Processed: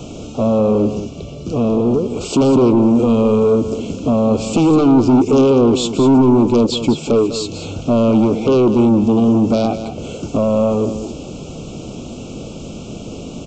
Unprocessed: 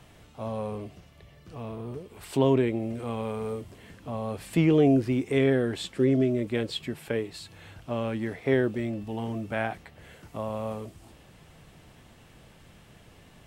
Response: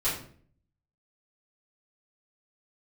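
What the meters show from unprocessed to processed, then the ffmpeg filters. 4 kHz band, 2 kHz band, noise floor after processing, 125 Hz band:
+12.5 dB, +1.0 dB, -31 dBFS, +10.5 dB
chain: -filter_complex "[0:a]crystalizer=i=1.5:c=0,bass=f=250:g=-4,treble=f=4k:g=-1,asplit=2[a][b];[b]acompressor=threshold=-37dB:ratio=6,volume=3dB[c];[a][c]amix=inputs=2:normalize=0,aeval=exprs='0.355*sin(PI/2*3.55*val(0)/0.355)':c=same,equalizer=f=250:t=o:w=1:g=9,equalizer=f=500:t=o:w=1:g=4,equalizer=f=1k:t=o:w=1:g=-9,equalizer=f=2k:t=o:w=1:g=-5,equalizer=f=4k:t=o:w=1:g=-6,aresample=16000,asoftclip=type=tanh:threshold=-7.5dB,aresample=44100,asuperstop=centerf=1800:order=8:qfactor=2,aecho=1:1:199:0.282"

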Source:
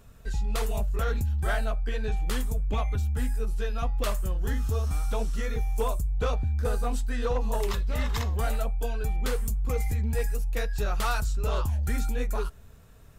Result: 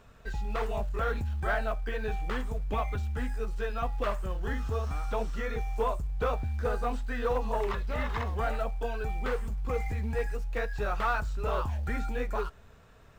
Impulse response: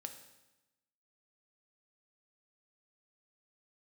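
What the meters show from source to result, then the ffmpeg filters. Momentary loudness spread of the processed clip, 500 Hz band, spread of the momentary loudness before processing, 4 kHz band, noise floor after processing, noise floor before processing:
4 LU, +0.5 dB, 3 LU, -6.5 dB, -54 dBFS, -49 dBFS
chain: -filter_complex "[0:a]equalizer=f=11k:t=o:w=0.32:g=-11.5,acrossover=split=2500[a][b];[b]acompressor=threshold=-50dB:ratio=4:attack=1:release=60[c];[a][c]amix=inputs=2:normalize=0,asplit=2[d][e];[e]highpass=f=720:p=1,volume=9dB,asoftclip=type=tanh:threshold=-18.5dB[f];[d][f]amix=inputs=2:normalize=0,lowpass=f=2.2k:p=1,volume=-6dB,asplit=2[g][h];[h]acrusher=bits=5:mode=log:mix=0:aa=0.000001,volume=-9dB[i];[g][i]amix=inputs=2:normalize=0,volume=-2.5dB"

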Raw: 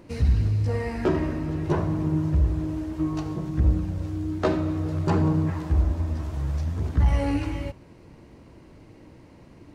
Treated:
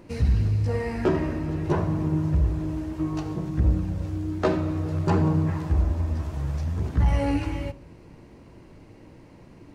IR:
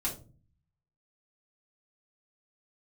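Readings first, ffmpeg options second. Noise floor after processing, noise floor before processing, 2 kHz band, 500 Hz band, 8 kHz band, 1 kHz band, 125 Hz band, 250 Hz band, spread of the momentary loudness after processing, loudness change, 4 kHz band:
-49 dBFS, -50 dBFS, +0.5 dB, +0.5 dB, n/a, +1.0 dB, 0.0 dB, 0.0 dB, 7 LU, 0.0 dB, 0.0 dB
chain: -filter_complex "[0:a]asplit=2[a][b];[b]highshelf=f=2.5k:t=q:w=1.5:g=9.5[c];[1:a]atrim=start_sample=2205,lowpass=f=3.1k:w=0.5412,lowpass=f=3.1k:w=1.3066[d];[c][d]afir=irnorm=-1:irlink=0,volume=-19dB[e];[a][e]amix=inputs=2:normalize=0"

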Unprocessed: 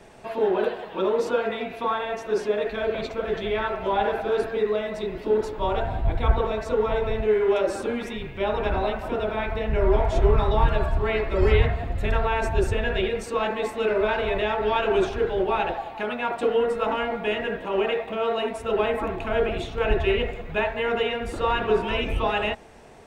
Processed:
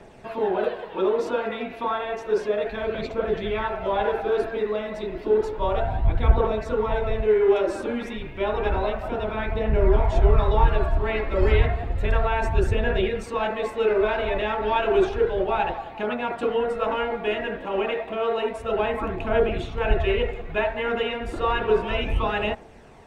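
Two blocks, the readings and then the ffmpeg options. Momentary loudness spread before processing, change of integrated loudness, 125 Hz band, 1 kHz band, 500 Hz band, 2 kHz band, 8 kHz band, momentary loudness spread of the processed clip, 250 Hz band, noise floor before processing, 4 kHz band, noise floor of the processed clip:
6 LU, +0.5 dB, +1.5 dB, 0.0 dB, +0.5 dB, -0.5 dB, n/a, 7 LU, +0.5 dB, -38 dBFS, -2.0 dB, -38 dBFS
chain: -af "aphaser=in_gain=1:out_gain=1:delay=3.8:decay=0.31:speed=0.31:type=triangular,highshelf=f=4.7k:g=-7"

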